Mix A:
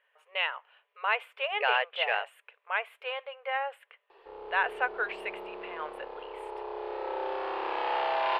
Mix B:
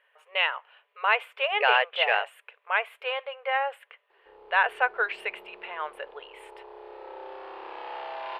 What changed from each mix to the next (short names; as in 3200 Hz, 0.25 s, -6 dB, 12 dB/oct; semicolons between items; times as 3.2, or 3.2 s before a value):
speech +5.0 dB; background -8.0 dB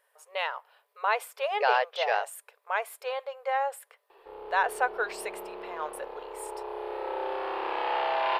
speech: remove EQ curve 840 Hz 0 dB, 2900 Hz +11 dB, 5300 Hz -18 dB; background +9.0 dB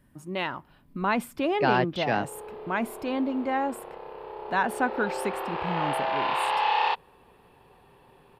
speech: remove brick-wall FIR high-pass 420 Hz; background: entry -2.10 s